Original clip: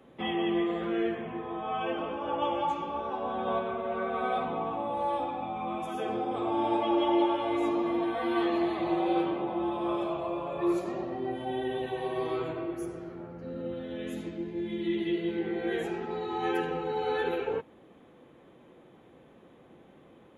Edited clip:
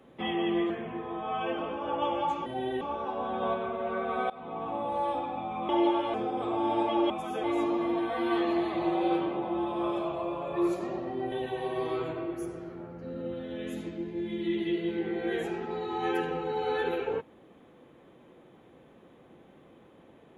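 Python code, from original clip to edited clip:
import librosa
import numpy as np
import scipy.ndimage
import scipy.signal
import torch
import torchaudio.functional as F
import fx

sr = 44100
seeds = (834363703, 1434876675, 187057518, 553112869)

y = fx.edit(x, sr, fx.cut(start_s=0.7, length_s=0.4),
    fx.fade_in_from(start_s=4.35, length_s=0.45, floor_db=-22.0),
    fx.swap(start_s=5.74, length_s=0.34, other_s=7.04, other_length_s=0.45),
    fx.move(start_s=11.37, length_s=0.35, to_s=2.86), tone=tone)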